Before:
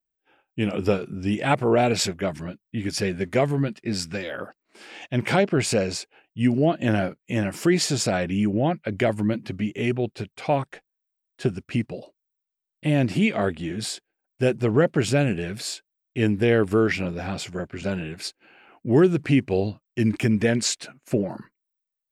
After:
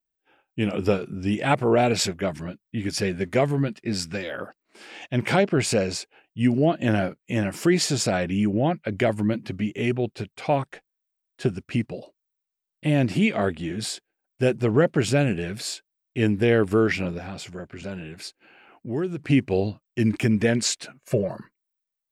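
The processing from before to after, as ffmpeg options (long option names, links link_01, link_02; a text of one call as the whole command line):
ffmpeg -i in.wav -filter_complex "[0:a]asettb=1/sr,asplit=3[link_01][link_02][link_03];[link_01]atrim=end=17.184[link_04];[link_02]atrim=start=17.18:end=19.3,asetpts=PTS-STARTPTS,afade=type=in:duration=0.004:curve=qsin,afade=type=out:start_time=2.116:duration=0.004:curve=qsin,acompressor=threshold=-41dB:ratio=1.5:attack=3.2:release=140:knee=1:detection=peak[link_05];[link_03]atrim=start=19.296[link_06];[link_04][link_05]acrossfade=duration=0.004:curve1=hsin:curve2=qsin[link_07];[link_07][link_06]acrossfade=duration=0.004:curve1=qsin:curve2=hsin,asettb=1/sr,asplit=3[link_08][link_09][link_10];[link_08]atrim=end=20.994[link_11];[link_09]atrim=start=20.99:end=21.39,asetpts=PTS-STARTPTS,afade=type=in:duration=0.004:curve=qsin,afade=type=out:start_time=0.396:duration=0.004:curve=qsin,aecho=1:1:1.8:0.7,atrim=end_sample=17640[link_12];[link_10]atrim=start=21.386[link_13];[link_11][link_12]acrossfade=duration=0.004:curve1=hsin:curve2=qsin[link_14];[link_14][link_13]acrossfade=duration=0.004:curve1=qsin:curve2=hsin" out.wav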